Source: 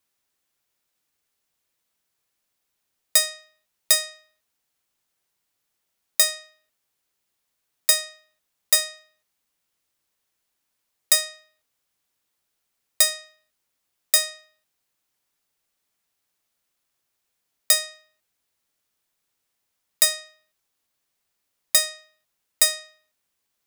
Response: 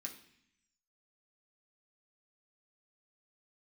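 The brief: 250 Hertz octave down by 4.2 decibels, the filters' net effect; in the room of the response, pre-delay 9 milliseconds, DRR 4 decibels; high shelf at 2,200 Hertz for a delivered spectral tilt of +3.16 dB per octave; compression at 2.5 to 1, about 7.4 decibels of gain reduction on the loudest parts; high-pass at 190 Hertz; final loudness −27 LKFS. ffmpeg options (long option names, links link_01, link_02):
-filter_complex "[0:a]highpass=190,equalizer=frequency=250:width_type=o:gain=-4,highshelf=frequency=2200:gain=-4.5,acompressor=threshold=-28dB:ratio=2.5,asplit=2[link_01][link_02];[1:a]atrim=start_sample=2205,adelay=9[link_03];[link_02][link_03]afir=irnorm=-1:irlink=0,volume=-0.5dB[link_04];[link_01][link_04]amix=inputs=2:normalize=0,volume=4.5dB"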